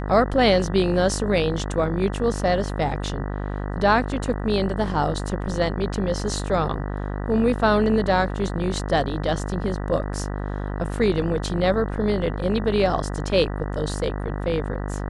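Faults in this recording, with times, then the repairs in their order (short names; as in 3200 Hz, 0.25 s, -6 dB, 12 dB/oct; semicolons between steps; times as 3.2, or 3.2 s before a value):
buzz 50 Hz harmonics 39 -28 dBFS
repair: de-hum 50 Hz, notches 39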